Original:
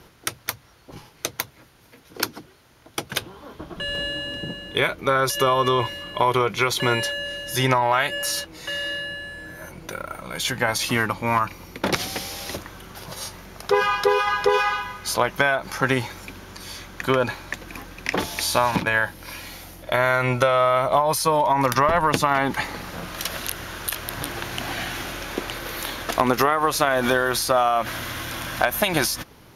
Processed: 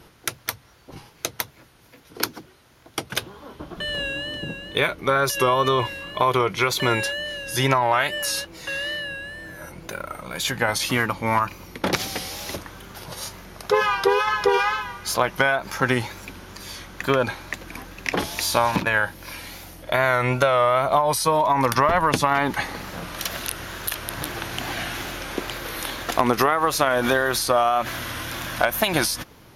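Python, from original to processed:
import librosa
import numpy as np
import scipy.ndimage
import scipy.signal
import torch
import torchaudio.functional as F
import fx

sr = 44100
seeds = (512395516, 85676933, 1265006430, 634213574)

y = fx.wow_flutter(x, sr, seeds[0], rate_hz=2.1, depth_cents=69.0)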